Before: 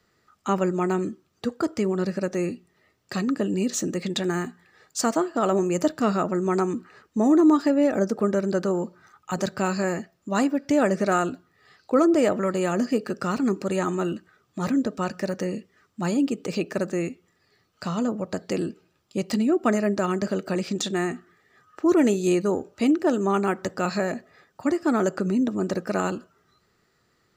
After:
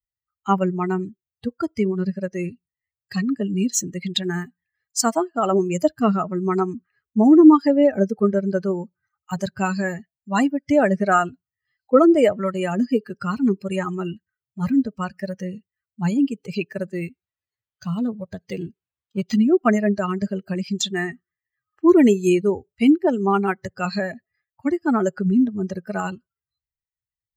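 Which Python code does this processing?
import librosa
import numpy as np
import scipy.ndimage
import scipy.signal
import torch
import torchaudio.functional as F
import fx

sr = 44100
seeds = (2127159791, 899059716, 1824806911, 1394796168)

y = fx.bin_expand(x, sr, power=2.0)
y = fx.notch(y, sr, hz=4600.0, q=14.0)
y = fx.resample_linear(y, sr, factor=4, at=(16.93, 19.38))
y = y * librosa.db_to_amplitude(9.0)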